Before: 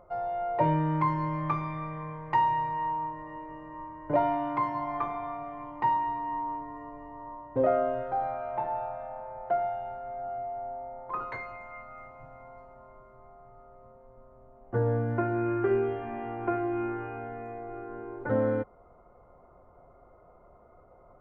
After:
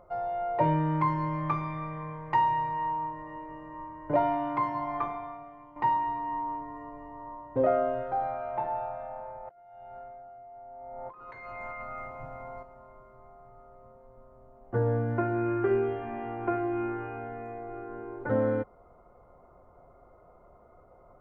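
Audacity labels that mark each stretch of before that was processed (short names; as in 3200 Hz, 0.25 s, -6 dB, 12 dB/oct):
5.050000	5.760000	fade out quadratic, to -10.5 dB
9.310000	12.630000	negative-ratio compressor -45 dBFS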